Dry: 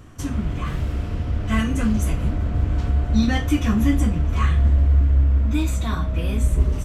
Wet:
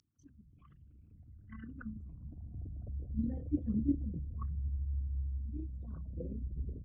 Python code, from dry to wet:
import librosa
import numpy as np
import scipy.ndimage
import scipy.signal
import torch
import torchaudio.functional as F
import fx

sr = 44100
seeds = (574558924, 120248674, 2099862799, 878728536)

y = fx.envelope_sharpen(x, sr, power=3.0)
y = fx.filter_sweep_bandpass(y, sr, from_hz=5400.0, to_hz=520.0, start_s=0.02, end_s=3.03, q=4.9)
y = y * 10.0 ** (11.0 / 20.0)